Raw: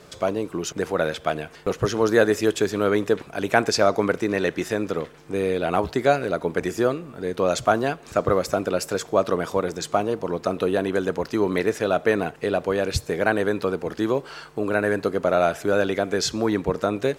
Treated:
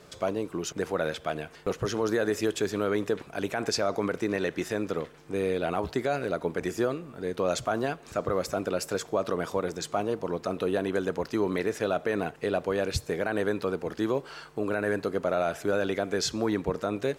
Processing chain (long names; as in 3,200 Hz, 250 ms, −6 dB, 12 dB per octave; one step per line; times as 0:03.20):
brickwall limiter −12 dBFS, peak gain reduction 10.5 dB
level −4.5 dB